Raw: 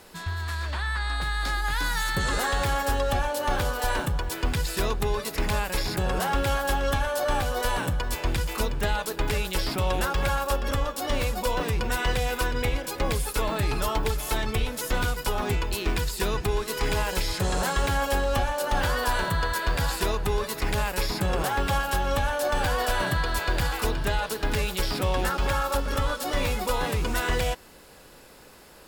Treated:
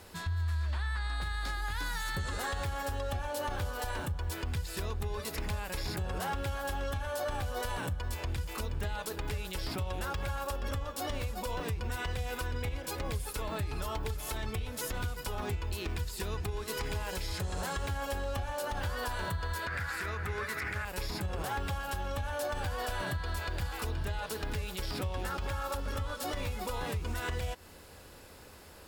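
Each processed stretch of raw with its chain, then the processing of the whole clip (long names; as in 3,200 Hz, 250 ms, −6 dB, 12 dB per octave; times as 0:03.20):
0:19.67–0:20.85: high-pass filter 68 Hz 24 dB per octave + flat-topped bell 1,700 Hz +13.5 dB 1.1 octaves + highs frequency-modulated by the lows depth 0.13 ms
whole clip: parametric band 81 Hz +13.5 dB 0.51 octaves; downward compressor, threshold −27 dBFS; brickwall limiter −23 dBFS; level −3 dB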